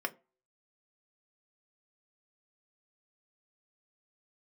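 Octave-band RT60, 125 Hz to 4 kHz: 0.25, 0.30, 0.35, 0.30, 0.25, 0.15 s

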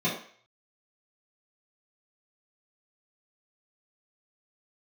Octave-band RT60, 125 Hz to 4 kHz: 0.35, 0.35, 0.50, 0.50, 0.55, 0.50 s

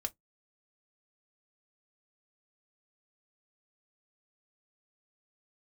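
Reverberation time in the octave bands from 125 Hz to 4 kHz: 0.25, 0.20, 0.15, 0.10, 0.10, 0.10 s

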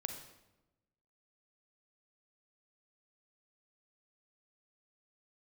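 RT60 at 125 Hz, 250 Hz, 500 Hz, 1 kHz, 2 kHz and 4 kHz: 1.4, 1.3, 1.1, 0.95, 0.80, 0.70 s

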